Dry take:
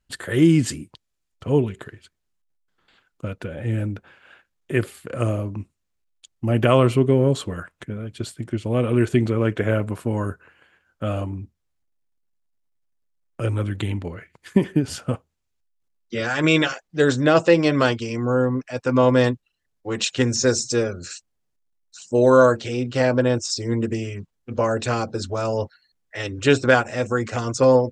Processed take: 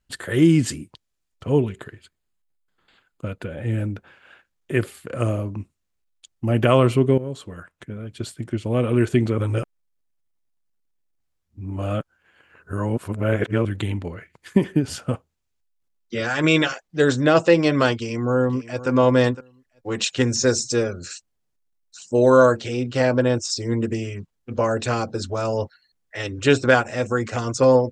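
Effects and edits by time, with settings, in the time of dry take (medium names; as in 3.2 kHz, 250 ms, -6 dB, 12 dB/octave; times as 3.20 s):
1.78–3.81 s: band-stop 5.7 kHz, Q 6.6
7.18–8.33 s: fade in, from -14.5 dB
9.38–13.65 s: reverse
17.95–18.89 s: echo throw 510 ms, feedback 15%, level -15.5 dB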